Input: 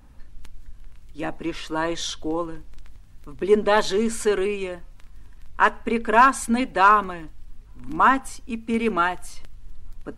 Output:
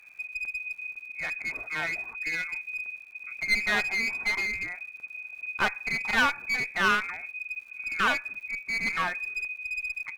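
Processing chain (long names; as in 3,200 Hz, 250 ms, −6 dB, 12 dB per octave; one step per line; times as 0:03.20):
voice inversion scrambler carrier 2,500 Hz
surface crackle 170 per second −44 dBFS
asymmetric clip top −24.5 dBFS
level −5 dB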